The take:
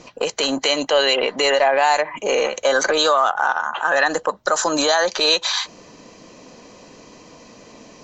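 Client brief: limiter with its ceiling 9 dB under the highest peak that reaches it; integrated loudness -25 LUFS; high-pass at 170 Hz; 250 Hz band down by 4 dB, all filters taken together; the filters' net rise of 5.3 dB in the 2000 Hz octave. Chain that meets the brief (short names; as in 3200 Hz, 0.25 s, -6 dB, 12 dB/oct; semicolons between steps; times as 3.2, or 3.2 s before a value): HPF 170 Hz; bell 250 Hz -4.5 dB; bell 2000 Hz +7 dB; gain -5 dB; limiter -15 dBFS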